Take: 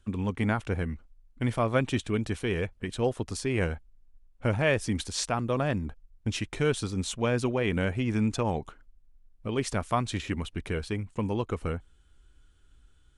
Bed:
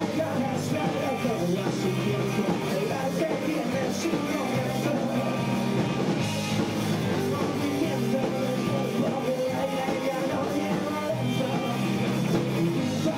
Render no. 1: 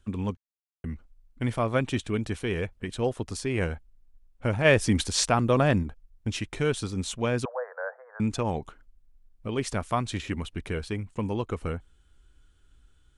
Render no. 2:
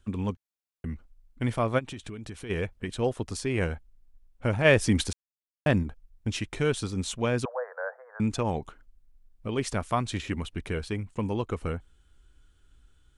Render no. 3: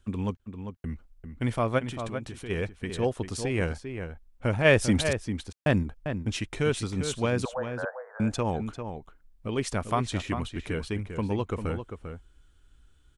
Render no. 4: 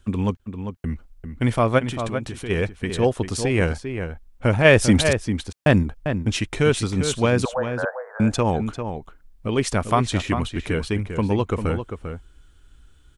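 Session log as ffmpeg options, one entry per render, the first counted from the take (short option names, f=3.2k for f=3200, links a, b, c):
-filter_complex "[0:a]asplit=3[a][b][c];[a]afade=t=out:st=4.64:d=0.02[d];[b]acontrast=49,afade=t=in:st=4.64:d=0.02,afade=t=out:st=5.82:d=0.02[e];[c]afade=t=in:st=5.82:d=0.02[f];[d][e][f]amix=inputs=3:normalize=0,asettb=1/sr,asplit=3[g][h][i];[g]atrim=end=7.454[j];[h]atrim=start=7.45:end=8.2,asetpts=PTS-STARTPTS,afade=t=in:d=0.004:c=qsin,afade=t=out:st=0.746:d=0.004:c=qsin,asuperpass=centerf=920:order=20:qfactor=0.75[k];[i]atrim=start=8.196[l];[j][k]acrossfade=d=0.004:c1=hsin:c2=qsin[m];[m][l]acrossfade=d=0.004:c1=qsin:c2=hsin,asplit=3[n][o][p];[n]atrim=end=0.37,asetpts=PTS-STARTPTS,afade=t=out:st=0.366:d=0.004:c=hsin[q];[o]atrim=start=0.37:end=0.84,asetpts=PTS-STARTPTS,volume=0[r];[p]atrim=start=0.84,asetpts=PTS-STARTPTS,afade=t=in:d=0.004:c=hsin[s];[q][r][s]concat=n=3:v=0:a=1"
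-filter_complex "[0:a]asplit=3[a][b][c];[a]afade=t=out:st=1.78:d=0.02[d];[b]acompressor=threshold=-35dB:ratio=10:attack=3.2:release=140:knee=1:detection=peak,afade=t=in:st=1.78:d=0.02,afade=t=out:st=2.49:d=0.02[e];[c]afade=t=in:st=2.49:d=0.02[f];[d][e][f]amix=inputs=3:normalize=0,asplit=3[g][h][i];[g]atrim=end=5.13,asetpts=PTS-STARTPTS,afade=t=out:st=5.126:d=0.004:c=hsin[j];[h]atrim=start=5.13:end=5.66,asetpts=PTS-STARTPTS,volume=0[k];[i]atrim=start=5.66,asetpts=PTS-STARTPTS,afade=t=in:d=0.004:c=hsin[l];[j][k][l]concat=n=3:v=0:a=1"
-filter_complex "[0:a]asplit=2[a][b];[b]adelay=396.5,volume=-8dB,highshelf=f=4k:g=-8.92[c];[a][c]amix=inputs=2:normalize=0"
-af "volume=7.5dB,alimiter=limit=-3dB:level=0:latency=1"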